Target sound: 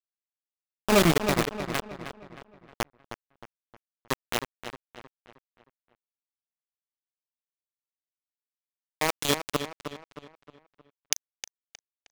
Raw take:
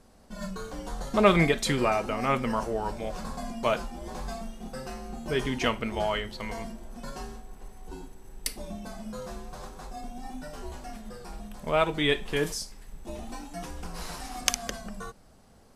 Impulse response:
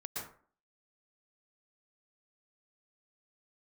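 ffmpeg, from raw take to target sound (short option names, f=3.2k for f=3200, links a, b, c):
-filter_complex "[0:a]highpass=f=95:p=1,afftfilt=real='re*gte(hypot(re,im),0.0794)':imag='im*gte(hypot(re,im),0.0794)':win_size=1024:overlap=0.75,equalizer=f=1.5k:t=o:w=2.2:g=-12.5,acrusher=bits=3:mix=0:aa=0.000001,atempo=1.3,asplit=2[a][b];[b]adelay=312,lowpass=f=4k:p=1,volume=-9dB,asplit=2[c][d];[d]adelay=312,lowpass=f=4k:p=1,volume=0.44,asplit=2[e][f];[f]adelay=312,lowpass=f=4k:p=1,volume=0.44,asplit=2[g][h];[h]adelay=312,lowpass=f=4k:p=1,volume=0.44,asplit=2[i][j];[j]adelay=312,lowpass=f=4k:p=1,volume=0.44[k];[a][c][e][g][i][k]amix=inputs=6:normalize=0,volume=3.5dB"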